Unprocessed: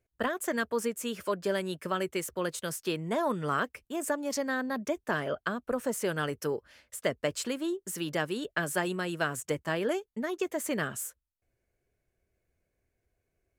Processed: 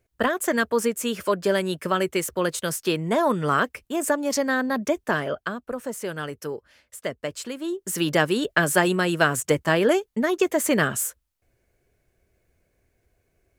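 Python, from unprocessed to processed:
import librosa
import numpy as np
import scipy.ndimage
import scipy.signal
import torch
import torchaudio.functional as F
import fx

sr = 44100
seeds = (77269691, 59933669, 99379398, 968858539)

y = fx.gain(x, sr, db=fx.line((5.0, 8.0), (5.74, 0.0), (7.54, 0.0), (8.01, 10.5)))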